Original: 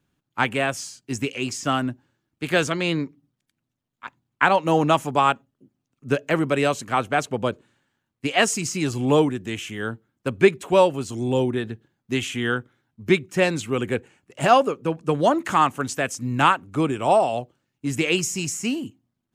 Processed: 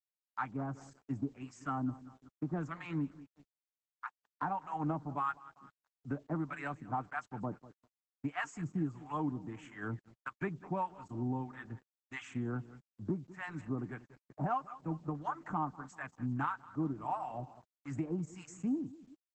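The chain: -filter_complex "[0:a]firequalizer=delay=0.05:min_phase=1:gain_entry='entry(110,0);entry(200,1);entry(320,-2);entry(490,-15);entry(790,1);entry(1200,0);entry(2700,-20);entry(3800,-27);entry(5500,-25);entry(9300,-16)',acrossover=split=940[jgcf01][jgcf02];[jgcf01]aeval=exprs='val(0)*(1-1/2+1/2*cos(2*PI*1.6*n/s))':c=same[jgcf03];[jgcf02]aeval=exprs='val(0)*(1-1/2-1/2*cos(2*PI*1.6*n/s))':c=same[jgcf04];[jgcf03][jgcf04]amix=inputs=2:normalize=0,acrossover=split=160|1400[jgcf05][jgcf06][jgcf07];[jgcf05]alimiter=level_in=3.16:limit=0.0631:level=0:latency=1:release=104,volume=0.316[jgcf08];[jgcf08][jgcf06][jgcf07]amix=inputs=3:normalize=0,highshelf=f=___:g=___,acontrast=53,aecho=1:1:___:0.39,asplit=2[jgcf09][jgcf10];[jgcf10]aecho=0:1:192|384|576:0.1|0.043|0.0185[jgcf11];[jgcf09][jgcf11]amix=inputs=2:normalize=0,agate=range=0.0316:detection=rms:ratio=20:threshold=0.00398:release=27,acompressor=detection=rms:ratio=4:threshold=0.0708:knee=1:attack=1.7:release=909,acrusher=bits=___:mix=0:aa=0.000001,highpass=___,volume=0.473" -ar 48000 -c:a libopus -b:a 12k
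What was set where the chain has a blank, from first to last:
3.3k, 4.5, 6.6, 10, 92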